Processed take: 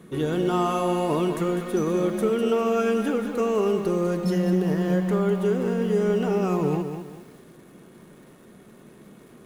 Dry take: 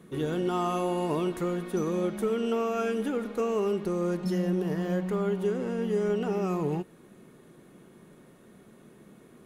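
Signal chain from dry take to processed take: lo-fi delay 0.201 s, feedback 35%, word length 9-bit, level -8 dB; gain +4.5 dB

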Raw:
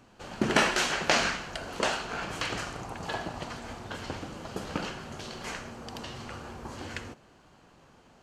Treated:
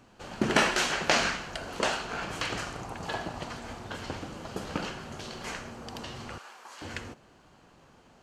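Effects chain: 6.38–6.82 HPF 990 Hz 12 dB/oct

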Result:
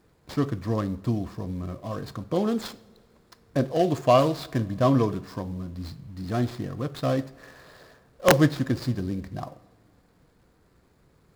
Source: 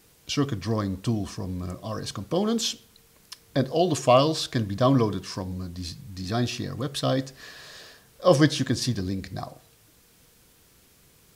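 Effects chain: median filter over 15 samples; two-slope reverb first 0.55 s, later 3 s, from -16 dB, DRR 16 dB; wrapped overs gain 7.5 dB

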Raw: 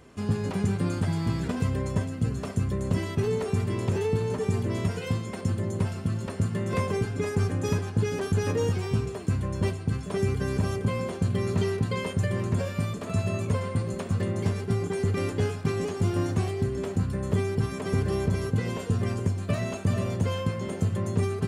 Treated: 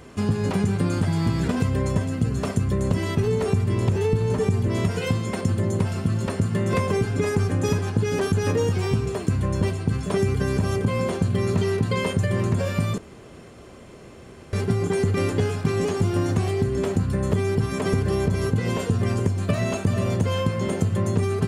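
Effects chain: 3.2–4.69 low shelf 110 Hz +9 dB; 12.98–14.53 room tone; compressor, threshold -26 dBFS, peak gain reduction 9 dB; gain +8 dB

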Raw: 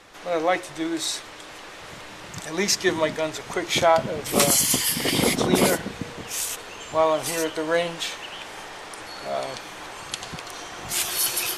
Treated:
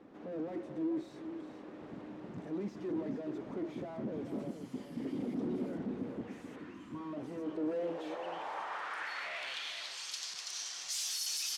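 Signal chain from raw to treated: 6.59–7.13 spectral delete 370–940 Hz; 6.27–6.71 bell 1900 Hz +13.5 dB -> +6.5 dB 0.9 oct; tube stage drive 36 dB, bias 0.5; band-pass sweep 260 Hz -> 5400 Hz, 7.44–10.06; echo 0.43 s -9.5 dB; gain +7.5 dB

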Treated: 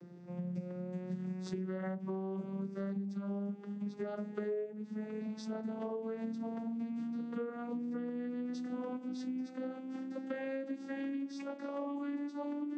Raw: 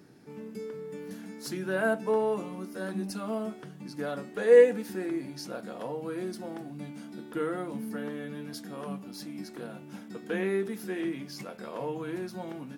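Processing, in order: vocoder on a gliding note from F3, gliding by +9 st; compressor 20:1, threshold -40 dBFS, peak gain reduction 27 dB; gain +5 dB

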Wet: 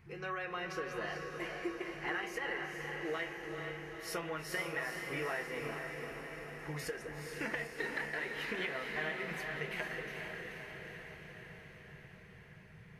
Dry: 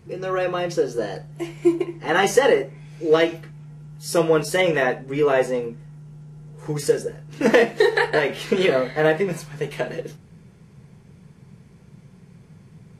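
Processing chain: graphic EQ 125/250/500/2000/4000/8000 Hz -4/-7/-9/+7/-3/-11 dB; compressor 10:1, threshold -29 dBFS, peak gain reduction 16.5 dB; diffused feedback echo 0.457 s, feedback 66%, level -4 dB; gain -7 dB

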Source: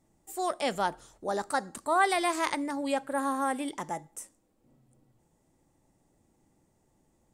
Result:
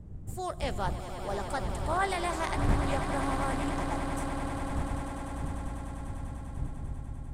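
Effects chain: wind noise 100 Hz -32 dBFS; swelling echo 99 ms, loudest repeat 8, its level -12.5 dB; Doppler distortion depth 0.47 ms; gain -5 dB

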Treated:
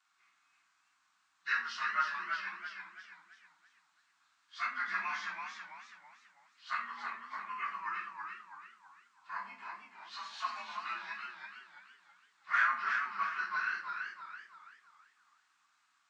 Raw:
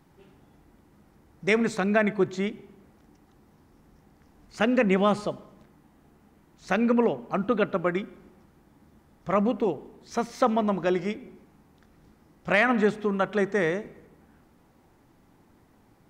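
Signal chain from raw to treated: inharmonic rescaling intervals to 89%; elliptic band-pass 1200–7600 Hz, stop band 40 dB; reverb RT60 0.45 s, pre-delay 3 ms, DRR -4 dB; warbling echo 0.329 s, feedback 40%, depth 113 cents, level -5 dB; gain -5.5 dB

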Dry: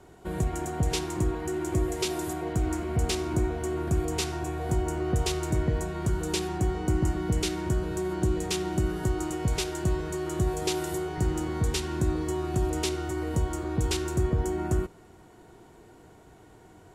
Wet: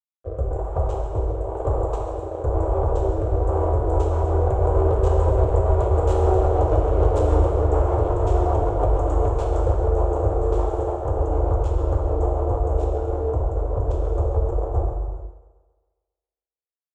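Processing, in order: Doppler pass-by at 6.73, 16 m/s, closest 21 m; RIAA curve playback; harmoniser -12 st -8 dB; fuzz box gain 26 dB, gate -35 dBFS; rotary speaker horn 1 Hz, later 6.7 Hz, at 3.42; compressor, threshold -19 dBFS, peak gain reduction 5.5 dB; EQ curve 100 Hz 0 dB, 210 Hz -25 dB, 430 Hz +8 dB, 640 Hz +10 dB, 1200 Hz +3 dB, 1900 Hz -15 dB, 3200 Hz -12 dB, 5000 Hz -16 dB, 7400 Hz -2 dB, 12000 Hz -20 dB; on a send: split-band echo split 340 Hz, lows 0.104 s, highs 0.136 s, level -14 dB; on the sum: non-linear reverb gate 0.5 s falling, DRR -0.5 dB

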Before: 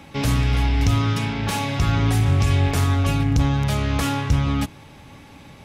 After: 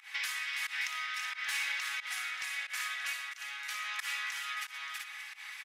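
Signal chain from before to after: bell 1900 Hz +8.5 dB 0.51 oct; comb 4 ms, depth 49%; on a send: tapped delay 59/123/328/381 ms -5.5/-13.5/-4/-6.5 dB; on the sum: compressor 4:1, threshold -28 dBFS, peak gain reduction 14.5 dB; HPF 1300 Hz 24 dB/oct; echo 0.578 s -13.5 dB; pump 90 bpm, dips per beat 1, -21 dB, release 0.123 s; hard clip -24.5 dBFS, distortion -34 dB; gain -1 dB

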